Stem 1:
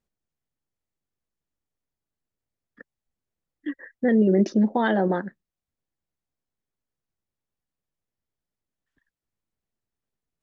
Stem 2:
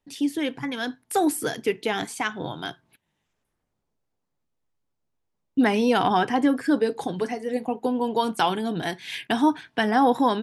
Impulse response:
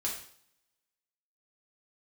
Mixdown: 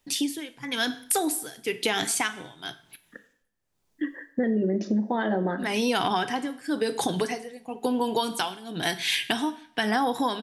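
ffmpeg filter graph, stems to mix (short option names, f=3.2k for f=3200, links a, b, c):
-filter_complex "[0:a]adelay=350,volume=-0.5dB,asplit=2[a][b];[b]volume=-9dB[c];[1:a]highshelf=f=2.2k:g=11,tremolo=f=0.99:d=0.93,volume=3dB,asplit=2[d][e];[e]volume=-12.5dB[f];[2:a]atrim=start_sample=2205[g];[c][f]amix=inputs=2:normalize=0[h];[h][g]afir=irnorm=-1:irlink=0[i];[a][d][i]amix=inputs=3:normalize=0,acompressor=threshold=-22dB:ratio=6"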